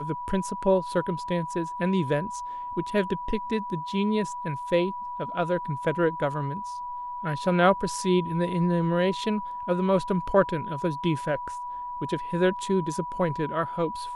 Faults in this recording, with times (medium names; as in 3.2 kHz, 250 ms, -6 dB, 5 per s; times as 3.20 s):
whine 980 Hz -32 dBFS